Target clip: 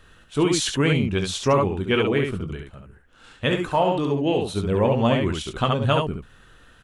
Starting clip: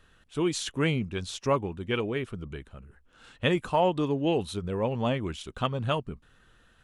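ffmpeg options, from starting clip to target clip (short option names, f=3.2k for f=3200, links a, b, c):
-filter_complex "[0:a]asettb=1/sr,asplit=3[a][b][c];[a]atrim=end=2.534[d];[b]atrim=start=2.53:end=4.56,asetpts=PTS-STARTPTS,afade=t=in:d=0.004:c=qsin,afade=t=out:st=2.026:d=0.004:c=qsin,flanger=delay=0.2:depth=10:regen=88:speed=1.4:shape=triangular[e];[c]atrim=start=4.556[f];[d][e]acrossfade=d=0.004:c1=hsin:c2=qsin[g];[g][f]acrossfade=d=0.004:c1=qsin:c2=hsin,aecho=1:1:21|70:0.299|0.596,alimiter=level_in=16dB:limit=-1dB:release=50:level=0:latency=1,volume=-8.5dB"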